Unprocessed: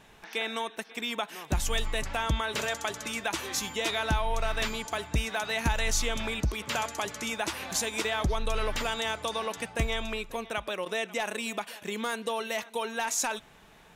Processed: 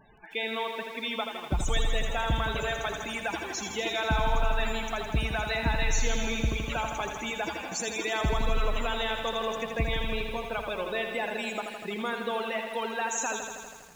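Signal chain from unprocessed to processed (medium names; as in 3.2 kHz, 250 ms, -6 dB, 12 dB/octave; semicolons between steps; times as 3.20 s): loudest bins only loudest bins 32; bit-crushed delay 81 ms, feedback 80%, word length 9-bit, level -6.5 dB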